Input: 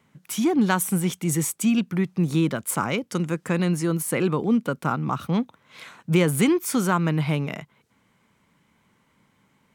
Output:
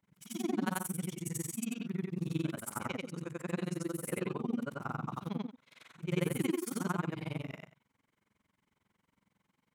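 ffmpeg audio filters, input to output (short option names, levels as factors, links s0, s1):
-af "afftfilt=real='re':imag='-im':win_size=8192:overlap=0.75,tremolo=f=22:d=0.974,volume=0.562"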